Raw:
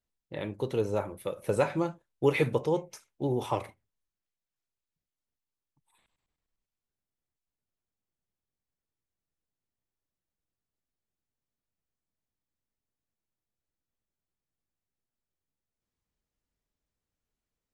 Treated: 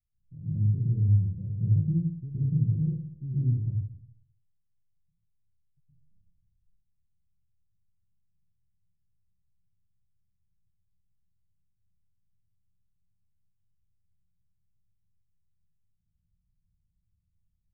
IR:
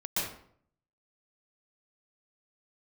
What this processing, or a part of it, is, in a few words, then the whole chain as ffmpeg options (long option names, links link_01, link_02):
club heard from the street: -filter_complex "[0:a]alimiter=limit=-21dB:level=0:latency=1:release=92,lowpass=frequency=140:width=0.5412,lowpass=frequency=140:width=1.3066[link_01];[1:a]atrim=start_sample=2205[link_02];[link_01][link_02]afir=irnorm=-1:irlink=0,volume=9dB"